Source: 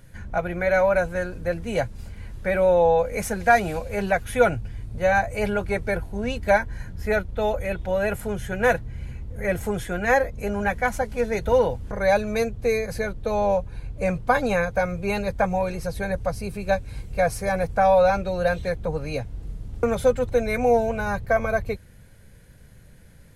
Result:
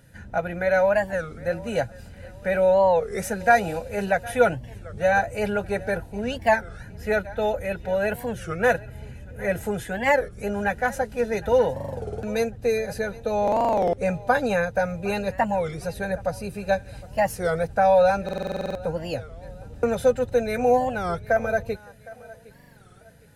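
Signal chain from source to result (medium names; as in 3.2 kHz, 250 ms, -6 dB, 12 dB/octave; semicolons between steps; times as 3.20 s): band-stop 360 Hz, Q 12; comb of notches 1.1 kHz; on a send: thinning echo 761 ms, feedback 37%, high-pass 230 Hz, level -20 dB; on the sum: buffer glitch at 11.72/13.43/18.24/22.50 s, samples 2048, times 10; warped record 33 1/3 rpm, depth 250 cents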